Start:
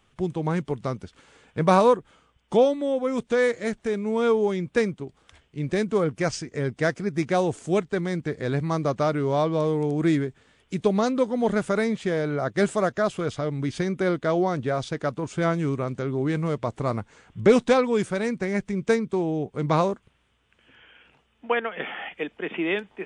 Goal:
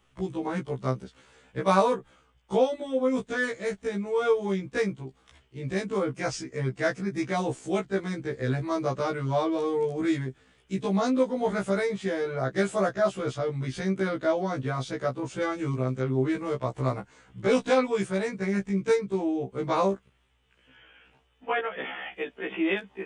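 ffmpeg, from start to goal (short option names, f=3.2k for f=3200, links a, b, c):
-filter_complex "[0:a]acrossover=split=530|1100[a][b][c];[a]alimiter=limit=-19dB:level=0:latency=1:release=137[d];[d][b][c]amix=inputs=3:normalize=0,afftfilt=real='re*1.73*eq(mod(b,3),0)':imag='im*1.73*eq(mod(b,3),0)':win_size=2048:overlap=0.75"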